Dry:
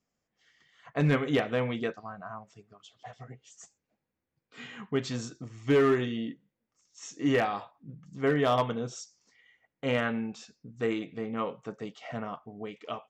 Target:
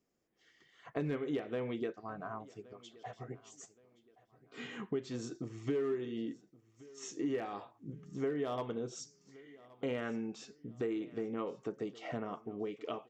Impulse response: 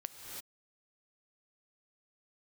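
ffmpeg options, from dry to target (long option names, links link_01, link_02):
-filter_complex "[0:a]equalizer=frequency=360:width=1.8:gain=12,acompressor=threshold=-33dB:ratio=4,asplit=2[link_01][link_02];[link_02]aecho=0:1:1122|2244|3366:0.0841|0.0303|0.0109[link_03];[link_01][link_03]amix=inputs=2:normalize=0,volume=-2.5dB"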